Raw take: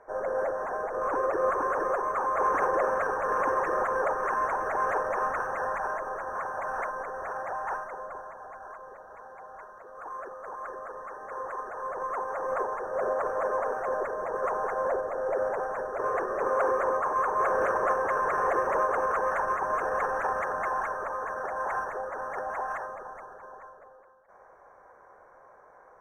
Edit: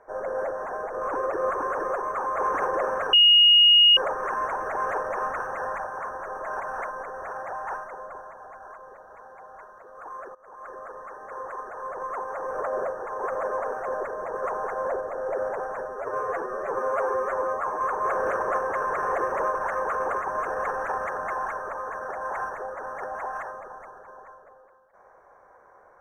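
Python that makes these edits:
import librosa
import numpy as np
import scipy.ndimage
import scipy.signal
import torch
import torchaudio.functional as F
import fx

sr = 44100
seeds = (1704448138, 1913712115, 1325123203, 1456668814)

y = fx.edit(x, sr, fx.bleep(start_s=3.13, length_s=0.84, hz=2870.0, db=-12.0),
    fx.reverse_span(start_s=5.84, length_s=0.76),
    fx.fade_in_from(start_s=10.35, length_s=0.44, floor_db=-19.5),
    fx.reverse_span(start_s=12.51, length_s=0.84),
    fx.stretch_span(start_s=15.85, length_s=1.3, factor=1.5),
    fx.reverse_span(start_s=18.9, length_s=0.61), tone=tone)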